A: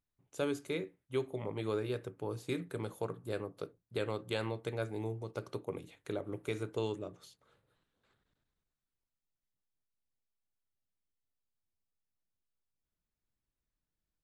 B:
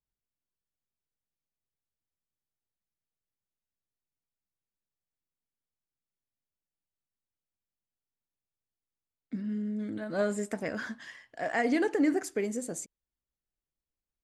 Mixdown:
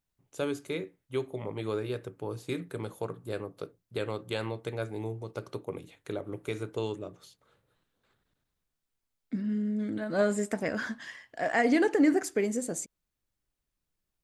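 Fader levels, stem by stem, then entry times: +2.5, +3.0 decibels; 0.00, 0.00 seconds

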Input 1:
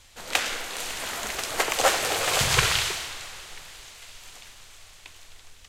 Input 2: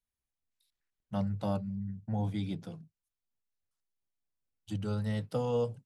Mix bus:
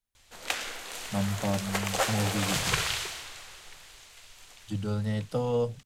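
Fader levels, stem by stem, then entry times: −6.5, +3.0 decibels; 0.15, 0.00 seconds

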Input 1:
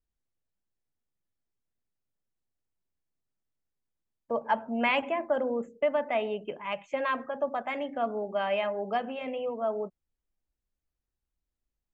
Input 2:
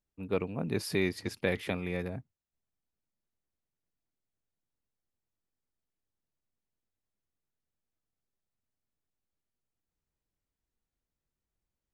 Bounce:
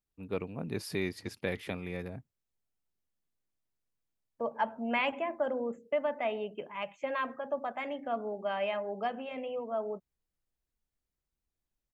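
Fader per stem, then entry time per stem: −4.0, −4.0 decibels; 0.10, 0.00 seconds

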